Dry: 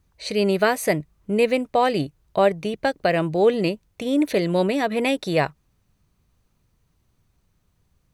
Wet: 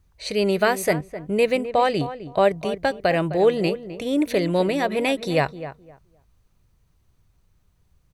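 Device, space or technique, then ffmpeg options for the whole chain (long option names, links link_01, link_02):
low shelf boost with a cut just above: -filter_complex "[0:a]lowshelf=frequency=80:gain=6.5,equalizer=frequency=230:width_type=o:width=0.74:gain=-3.5,asettb=1/sr,asplit=3[link_01][link_02][link_03];[link_01]atrim=end=1.684[link_04];[link_02]atrim=start=1.68:end=2.45,asetpts=PTS-STARTPTS,afade=type=in:duration=0.004:curve=qsin,afade=type=out:start_time=0.766:duration=0.004:curve=qsin,lowpass=10000[link_05];[link_03]atrim=start=2.446[link_06];[link_04][link_05]acrossfade=duration=0.004:curve1=hsin:curve2=qsin[link_07];[link_07][link_06]acrossfade=duration=0.004:curve1=qsin:curve2=hsin,asplit=2[link_08][link_09];[link_09]adelay=258,lowpass=frequency=1500:poles=1,volume=-12dB,asplit=2[link_10][link_11];[link_11]adelay=258,lowpass=frequency=1500:poles=1,volume=0.2,asplit=2[link_12][link_13];[link_13]adelay=258,lowpass=frequency=1500:poles=1,volume=0.2[link_14];[link_08][link_10][link_12][link_14]amix=inputs=4:normalize=0"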